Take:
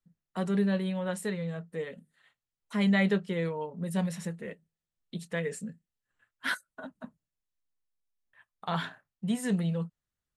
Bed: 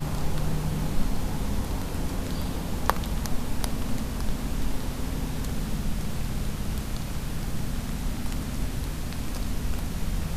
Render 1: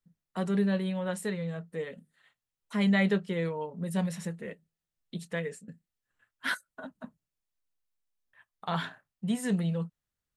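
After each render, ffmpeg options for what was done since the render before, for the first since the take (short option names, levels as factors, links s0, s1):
-filter_complex "[0:a]asplit=2[s0][s1];[s0]atrim=end=5.68,asetpts=PTS-STARTPTS,afade=t=out:st=5.26:d=0.42:c=qsin:silence=0.0794328[s2];[s1]atrim=start=5.68,asetpts=PTS-STARTPTS,afade=t=in:d=0.004:c=hsin:silence=0.0794328[s3];[s2][s3]concat=n=2:v=0:a=1"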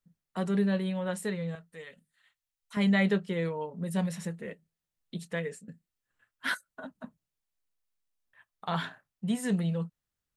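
-filter_complex "[0:a]asettb=1/sr,asplit=3[s0][s1][s2];[s0]atrim=end=1.554[s3];[s1]atrim=start=1.55:end=2.77,asetpts=PTS-STARTPTS,afade=t=in:d=0.004:c=qsin,afade=t=out:st=1.216:d=0.004:c=qsin,equalizer=f=280:w=0.36:g=-14[s4];[s2]atrim=start=2.766[s5];[s3][s4]acrossfade=d=0.004:c1=hsin:c2=qsin[s6];[s6][s5]acrossfade=d=0.004:c1=qsin:c2=hsin"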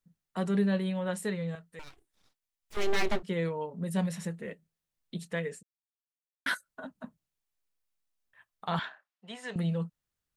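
-filter_complex "[0:a]asettb=1/sr,asplit=3[s0][s1][s2];[s0]atrim=end=1.794[s3];[s1]atrim=start=1.79:end=3.23,asetpts=PTS-STARTPTS,afade=t=in:d=0.004:c=qsin,afade=t=out:st=1.436:d=0.004:c=qsin,aeval=exprs='abs(val(0))':c=same[s4];[s2]atrim=start=3.226[s5];[s3][s4]acrossfade=d=0.004:c1=hsin:c2=qsin[s6];[s6][s5]acrossfade=d=0.004:c1=qsin:c2=hsin,asettb=1/sr,asplit=3[s7][s8][s9];[s7]atrim=end=8.794[s10];[s8]atrim=start=8.79:end=9.56,asetpts=PTS-STARTPTS,afade=t=in:d=0.004:c=qsin,afade=t=out:st=0.766:d=0.004:c=qsin,highpass=640,lowpass=4500[s11];[s9]atrim=start=9.556[s12];[s10][s11]acrossfade=d=0.004:c1=hsin:c2=qsin[s13];[s13][s12]acrossfade=d=0.004:c1=qsin:c2=hsin,asplit=3[s14][s15][s16];[s14]atrim=end=5.63,asetpts=PTS-STARTPTS,afade=t=out:st=5.626:d=0.004:c=hsin[s17];[s15]atrim=start=5.63:end=6.46,asetpts=PTS-STARTPTS,volume=0[s18];[s16]atrim=start=6.46,asetpts=PTS-STARTPTS,afade=t=in:d=0.004:c=hsin[s19];[s17][s18][s19]concat=n=3:v=0:a=1"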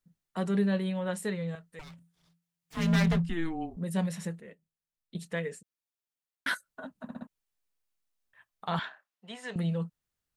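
-filter_complex "[0:a]asettb=1/sr,asplit=3[s0][s1][s2];[s0]atrim=end=1.814[s3];[s1]atrim=start=1.81:end=3.77,asetpts=PTS-STARTPTS,afade=t=in:d=0.004:c=qsin,afade=t=out:st=1.956:d=0.004:c=qsin,afreqshift=-170[s4];[s2]atrim=start=3.766[s5];[s3][s4]acrossfade=d=0.004:c1=hsin:c2=qsin[s6];[s6][s5]acrossfade=d=0.004:c1=qsin:c2=hsin,asplit=7[s7][s8][s9][s10][s11][s12][s13];[s7]atrim=end=4.402[s14];[s8]atrim=start=4.398:end=5.152,asetpts=PTS-STARTPTS,volume=0.355[s15];[s9]atrim=start=5.148:end=7.092[s16];[s10]atrim=start=7.028:end=7.092[s17];[s11]atrim=start=7.028:end=7.092[s18];[s12]atrim=start=7.028:end=7.092[s19];[s13]atrim=start=7.268[s20];[s14][s15]acrossfade=d=0.004:c1=hsin:c2=hsin[s21];[s21][s16]acrossfade=d=0.004:c1=hsin:c2=hsin[s22];[s22][s17]acrossfade=d=0.004:c1=hsin:c2=hsin[s23];[s23][s18]acrossfade=d=0.004:c1=hsin:c2=hsin[s24];[s24][s19]acrossfade=d=0.004:c1=hsin:c2=hsin[s25];[s25][s20]acrossfade=d=0.004:c1=hsin:c2=hsin"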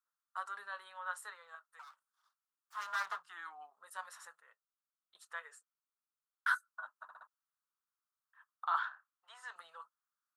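-af "highpass=f=1100:w=0.5412,highpass=f=1100:w=1.3066,highshelf=f=1700:t=q:w=3:g=-9"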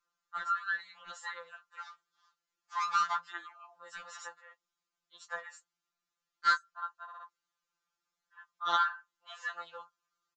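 -af "aresample=16000,aeval=exprs='0.106*sin(PI/2*2.24*val(0)/0.106)':c=same,aresample=44100,afftfilt=real='re*2.83*eq(mod(b,8),0)':imag='im*2.83*eq(mod(b,8),0)':win_size=2048:overlap=0.75"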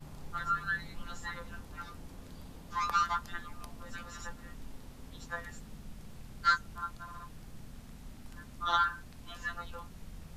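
-filter_complex "[1:a]volume=0.112[s0];[0:a][s0]amix=inputs=2:normalize=0"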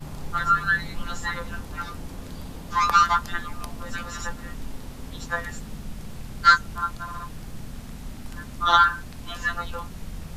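-af "volume=3.76"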